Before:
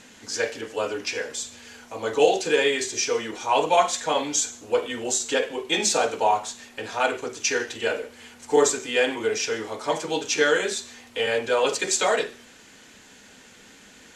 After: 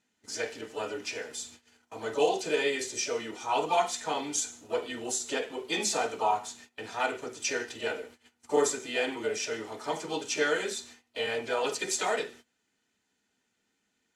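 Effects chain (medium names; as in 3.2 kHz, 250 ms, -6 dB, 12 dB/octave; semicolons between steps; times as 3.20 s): comb of notches 550 Hz; harmony voices +5 st -12 dB; gate -43 dBFS, range -21 dB; trim -6 dB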